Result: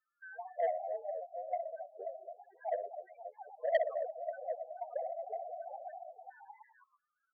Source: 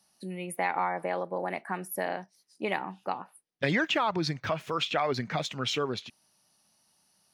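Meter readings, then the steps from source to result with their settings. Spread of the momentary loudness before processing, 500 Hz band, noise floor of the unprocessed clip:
11 LU, -3.5 dB, -70 dBFS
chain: four-band scrambler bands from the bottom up 2143; on a send: tapped delay 65/124/265/537/743/861 ms -6/-11.5/-11/-11.5/-12/-17 dB; on the sum: wow and flutter 130 cents; graphic EQ 125/250/500/1000/2000/4000/8000 Hz +4/-10/+6/-6/-10/-6/+7 dB; auto-wah 680–1400 Hz, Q 4.9, down, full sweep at -38.5 dBFS; high shelf 2900 Hz -3.5 dB; notches 60/120/180/240/300/360 Hz; in parallel at -4.5 dB: sample-rate reducer 4300 Hz, jitter 0%; on the sum: loudest bins only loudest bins 4; core saturation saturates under 990 Hz; gain +9.5 dB

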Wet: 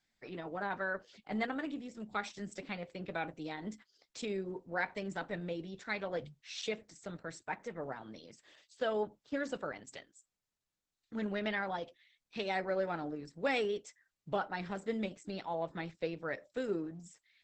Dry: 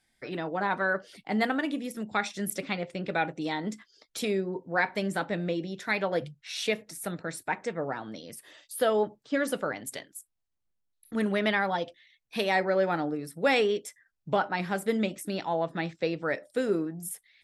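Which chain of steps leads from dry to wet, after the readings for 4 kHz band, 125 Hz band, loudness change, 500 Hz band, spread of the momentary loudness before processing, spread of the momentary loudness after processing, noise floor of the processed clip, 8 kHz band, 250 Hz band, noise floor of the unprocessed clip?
-9.5 dB, -9.0 dB, -9.0 dB, -8.5 dB, 12 LU, 12 LU, under -85 dBFS, -13.5 dB, -9.0 dB, -78 dBFS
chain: gain -8 dB; Opus 10 kbps 48000 Hz

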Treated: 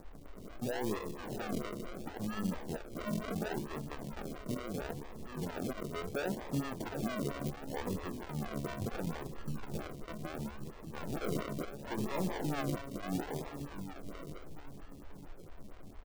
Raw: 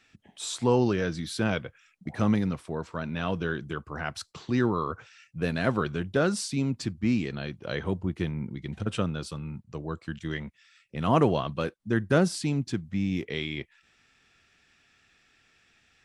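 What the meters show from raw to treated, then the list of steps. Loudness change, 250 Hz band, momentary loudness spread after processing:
-10.5 dB, -10.0 dB, 15 LU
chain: on a send: echo 0.765 s -15 dB; on the sum: step gate "xx.xx.xxx" 76 bpm -12 dB; added noise brown -45 dBFS; limiter -21 dBFS, peak gain reduction 11 dB; soft clip -29 dBFS, distortion -11 dB; resonator 71 Hz, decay 1.5 s, harmonics all, mix 80%; darkening echo 1.038 s, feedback 35%, low-pass 1800 Hz, level -12 dB; decimation with a swept rate 41×, swing 60% 0.72 Hz; photocell phaser 4.4 Hz; gain +12 dB

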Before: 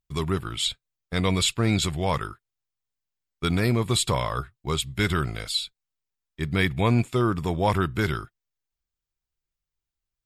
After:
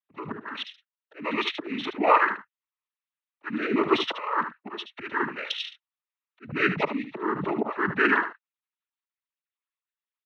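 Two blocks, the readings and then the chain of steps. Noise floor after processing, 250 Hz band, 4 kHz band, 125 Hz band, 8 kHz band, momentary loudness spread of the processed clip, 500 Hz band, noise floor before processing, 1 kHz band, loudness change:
under -85 dBFS, -3.0 dB, -6.0 dB, -17.5 dB, under -20 dB, 15 LU, -1.0 dB, under -85 dBFS, +3.5 dB, -1.5 dB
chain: sine-wave speech; dynamic EQ 1300 Hz, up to +4 dB, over -35 dBFS, Q 1.5; auto swell 0.518 s; noise vocoder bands 12; echo 75 ms -10.5 dB; gain +3.5 dB

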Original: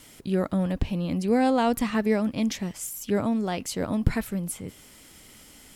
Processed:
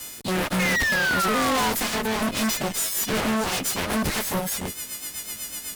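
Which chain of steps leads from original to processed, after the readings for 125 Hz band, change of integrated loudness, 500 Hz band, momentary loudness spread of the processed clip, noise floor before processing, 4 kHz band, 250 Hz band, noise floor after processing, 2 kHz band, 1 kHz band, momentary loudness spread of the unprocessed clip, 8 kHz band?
-2.0 dB, +2.5 dB, -1.0 dB, 10 LU, -51 dBFS, +12.0 dB, -2.5 dB, -39 dBFS, +13.5 dB, +5.0 dB, 9 LU, +10.5 dB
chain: frequency quantiser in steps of 3 st; limiter -19 dBFS, peak gain reduction 8.5 dB; rotary speaker horn 1.1 Hz, later 8 Hz, at 2.36; added harmonics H 7 -13 dB, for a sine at -17 dBFS; painted sound fall, 0.59–1.7, 950–2200 Hz -37 dBFS; fuzz box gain 43 dB, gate -51 dBFS; gain -7.5 dB

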